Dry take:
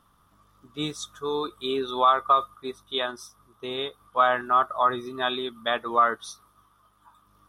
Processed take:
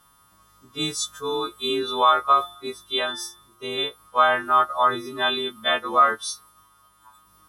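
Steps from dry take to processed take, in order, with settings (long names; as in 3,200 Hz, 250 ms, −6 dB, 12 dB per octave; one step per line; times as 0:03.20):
every partial snapped to a pitch grid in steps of 2 semitones
0:02.27–0:03.78: hum removal 176 Hz, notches 21
level +2 dB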